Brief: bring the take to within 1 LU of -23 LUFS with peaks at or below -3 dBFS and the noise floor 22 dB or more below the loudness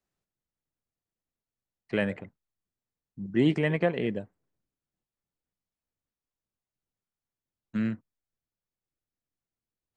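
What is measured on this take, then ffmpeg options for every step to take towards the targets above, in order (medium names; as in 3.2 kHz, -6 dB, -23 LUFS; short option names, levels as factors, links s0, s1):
loudness -29.0 LUFS; peak level -12.5 dBFS; loudness target -23.0 LUFS
-> -af "volume=2"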